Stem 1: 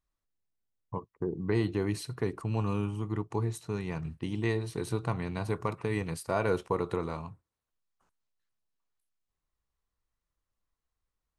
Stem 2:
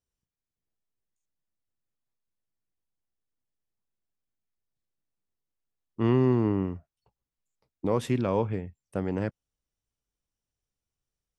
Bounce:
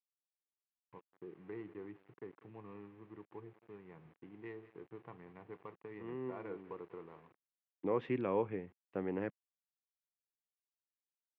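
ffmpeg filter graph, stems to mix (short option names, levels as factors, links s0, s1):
-filter_complex "[0:a]adynamicsmooth=sensitivity=5:basefreq=830,volume=0.188,asplit=3[s0][s1][s2];[s1]volume=0.133[s3];[1:a]volume=0.631[s4];[s2]apad=whole_len=501877[s5];[s4][s5]sidechaincompress=threshold=0.002:ratio=8:attack=5.1:release=758[s6];[s3]aecho=0:1:193:1[s7];[s0][s6][s7]amix=inputs=3:normalize=0,aeval=exprs='val(0)*gte(abs(val(0)),0.0015)':c=same,highpass=230,equalizer=f=230:t=q:w=4:g=-6,equalizer=f=620:t=q:w=4:g=-7,equalizer=f=920:t=q:w=4:g=-3,equalizer=f=1400:t=q:w=4:g=-5,lowpass=f=2500:w=0.5412,lowpass=f=2500:w=1.3066"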